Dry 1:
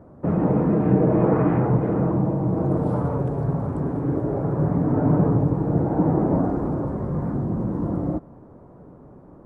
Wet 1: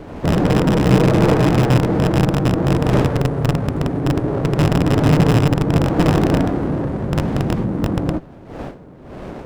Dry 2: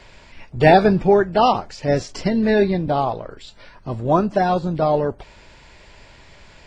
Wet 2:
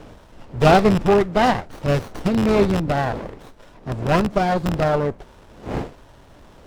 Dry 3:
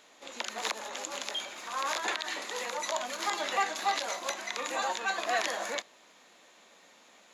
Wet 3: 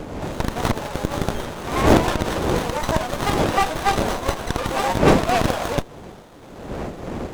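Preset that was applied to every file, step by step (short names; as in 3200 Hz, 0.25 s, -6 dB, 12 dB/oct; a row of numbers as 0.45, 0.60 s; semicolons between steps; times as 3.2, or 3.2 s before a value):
rattling part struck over -20 dBFS, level -11 dBFS; wind noise 570 Hz -36 dBFS; high shelf 7900 Hz +9.5 dB; running maximum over 17 samples; normalise peaks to -2 dBFS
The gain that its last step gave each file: +4.5, 0.0, +11.0 dB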